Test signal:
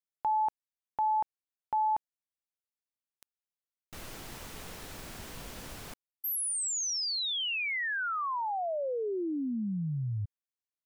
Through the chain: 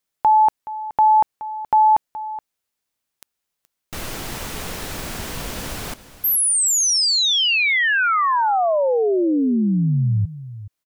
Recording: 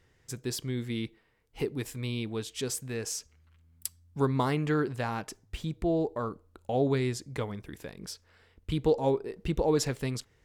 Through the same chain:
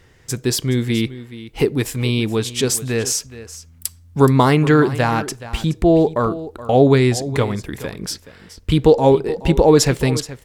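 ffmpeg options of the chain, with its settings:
ffmpeg -i in.wav -filter_complex "[0:a]asplit=2[link_01][link_02];[link_02]aecho=0:1:423:0.168[link_03];[link_01][link_03]amix=inputs=2:normalize=0,alimiter=level_in=15.5dB:limit=-1dB:release=50:level=0:latency=1,volume=-1dB" out.wav

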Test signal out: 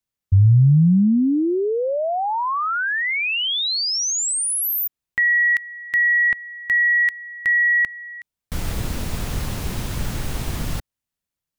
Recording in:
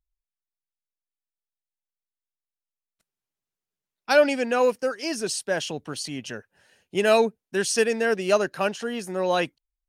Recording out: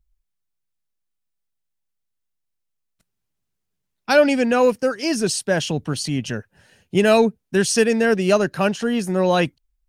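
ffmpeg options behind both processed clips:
ffmpeg -i in.wav -filter_complex "[0:a]asplit=2[link_01][link_02];[link_02]alimiter=limit=-16dB:level=0:latency=1:release=268,volume=-2dB[link_03];[link_01][link_03]amix=inputs=2:normalize=0,bass=frequency=250:gain=11,treble=frequency=4000:gain=0" out.wav

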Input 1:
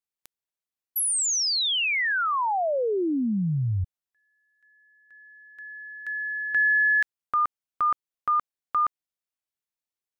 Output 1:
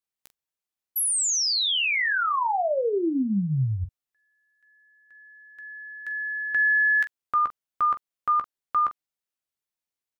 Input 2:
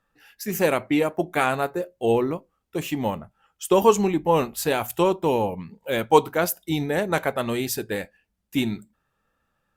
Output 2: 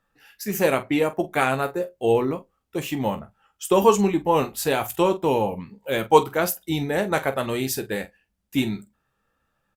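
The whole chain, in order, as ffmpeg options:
ffmpeg -i in.wav -af "aecho=1:1:15|45:0.316|0.211" out.wav

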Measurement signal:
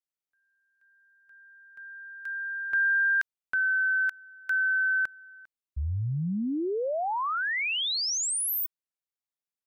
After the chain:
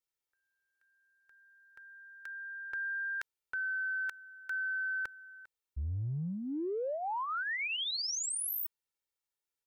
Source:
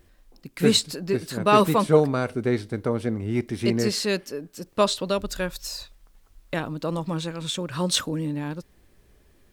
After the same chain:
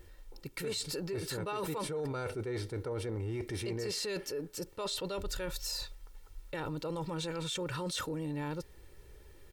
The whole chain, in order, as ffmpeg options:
ffmpeg -i in.wav -af "aecho=1:1:2.2:0.67,areverse,acompressor=threshold=-33dB:ratio=16:attack=2.2:release=28:knee=6:detection=rms,areverse" out.wav

